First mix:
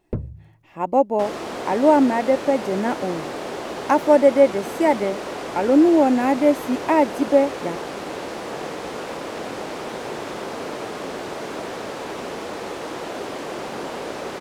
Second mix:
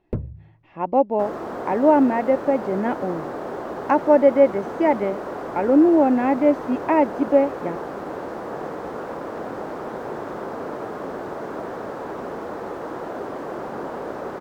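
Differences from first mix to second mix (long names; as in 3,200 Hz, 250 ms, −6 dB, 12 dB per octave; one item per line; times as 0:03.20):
speech: add high-frequency loss of the air 230 metres
second sound: add flat-topped bell 5,100 Hz −14.5 dB 2.8 octaves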